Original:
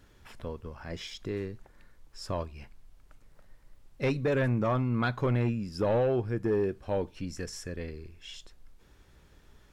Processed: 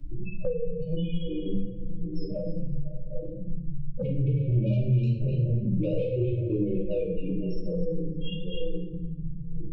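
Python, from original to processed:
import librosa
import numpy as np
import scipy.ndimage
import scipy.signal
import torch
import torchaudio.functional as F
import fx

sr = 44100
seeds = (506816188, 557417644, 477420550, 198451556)

p1 = scipy.signal.sosfilt(scipy.signal.butter(4, 4100.0, 'lowpass', fs=sr, output='sos'), x)
p2 = fx.hum_notches(p1, sr, base_hz=50, count=7)
p3 = p2 + 0.89 * np.pad(p2, (int(6.1 * sr / 1000.0), 0))[:len(p2)]
p4 = fx.level_steps(p3, sr, step_db=15)
p5 = p3 + F.gain(torch.from_numpy(p4), 0.0).numpy()
p6 = fx.spec_topn(p5, sr, count=4)
p7 = 10.0 ** (-23.5 / 20.0) * np.tanh(p6 / 10.0 ** (-23.5 / 20.0))
p8 = fx.step_gate(p7, sr, bpm=134, pattern='.x..xxxxx', floor_db=-12.0, edge_ms=4.5)
p9 = fx.brickwall_bandstop(p8, sr, low_hz=610.0, high_hz=2200.0)
p10 = p9 + fx.echo_stepped(p9, sr, ms=252, hz=2700.0, octaves=-1.4, feedback_pct=70, wet_db=-7.0, dry=0)
p11 = fx.room_shoebox(p10, sr, seeds[0], volume_m3=150.0, walls='mixed', distance_m=2.8)
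p12 = fx.band_squash(p11, sr, depth_pct=100)
y = F.gain(torch.from_numpy(p12), -5.5).numpy()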